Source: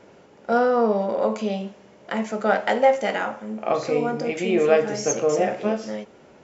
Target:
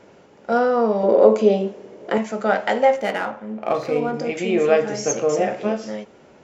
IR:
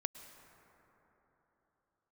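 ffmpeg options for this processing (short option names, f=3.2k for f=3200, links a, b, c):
-filter_complex "[0:a]asettb=1/sr,asplit=3[a][b][c];[a]atrim=end=1.034[d];[b]atrim=start=1.03:end=2.18,asetpts=PTS-STARTPTS,afade=t=in:d=0.004:c=qsin,afade=t=out:st=1.146:d=0.004:c=qsin,equalizer=f=400:t=o:w=1.2:g=13.5[e];[c]atrim=start=2.176[f];[d][e]acrossfade=d=0.004:c1=hsin:c2=qsin[g];[g][f]acrossfade=d=0.004:c1=qsin:c2=hsin,asettb=1/sr,asplit=3[h][i][j];[h]atrim=end=2.964[k];[i]atrim=start=2.96:end=4.14,asetpts=PTS-STARTPTS,afade=t=in:d=0.004:c=qsin,afade=t=out:st=1.176:d=0.004:c=qsin,adynamicsmooth=sensitivity=5:basefreq=3k[l];[j]atrim=start=4.136[m];[k][l]acrossfade=d=0.004:c1=hsin:c2=qsin[n];[n][m]acrossfade=d=0.004:c1=qsin:c2=hsin,volume=1dB"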